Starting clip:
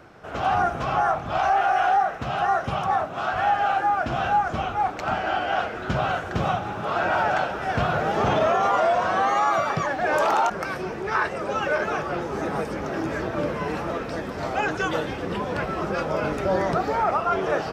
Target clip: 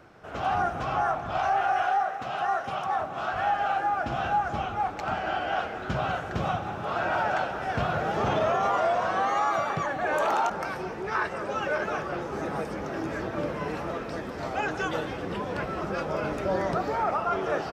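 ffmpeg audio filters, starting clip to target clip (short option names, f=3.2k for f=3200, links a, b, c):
-filter_complex "[0:a]asettb=1/sr,asplit=3[a][b][c];[a]atrim=end=1.824[d];[b]atrim=start=1.82:end=2.99,asetpts=PTS-STARTPTS,afade=t=in:d=0.004:c=qsin,afade=t=out:st=1.166:d=0.004:c=qsin,highpass=f=340:p=1[e];[c]atrim=start=2.986[f];[d][e]acrossfade=d=0.004:c1=hsin:c2=qsin[g];[g][f]acrossfade=d=0.004:c1=qsin:c2=hsin,asettb=1/sr,asplit=3[h][i][j];[h]atrim=end=9.644[k];[i]atrim=start=9.64:end=10.31,asetpts=PTS-STARTPTS,afade=t=in:d=0.004:c=qsin,afade=t=out:st=0.666:d=0.004:c=qsin,bandreject=f=5.1k:w=5.1[l];[j]atrim=start=10.306[m];[k][l]acrossfade=d=0.004:c1=hsin:c2=qsin[n];[n][m]acrossfade=d=0.004:c1=qsin:c2=hsin,asplit=2[o][p];[p]adelay=191,lowpass=f=2k:p=1,volume=-12dB,asplit=2[q][r];[r]adelay=191,lowpass=f=2k:p=1,volume=0.54,asplit=2[s][t];[t]adelay=191,lowpass=f=2k:p=1,volume=0.54,asplit=2[u][v];[v]adelay=191,lowpass=f=2k:p=1,volume=0.54,asplit=2[w][x];[x]adelay=191,lowpass=f=2k:p=1,volume=0.54,asplit=2[y][z];[z]adelay=191,lowpass=f=2k:p=1,volume=0.54[aa];[o][q][s][u][w][y][aa]amix=inputs=7:normalize=0,volume=-4.5dB"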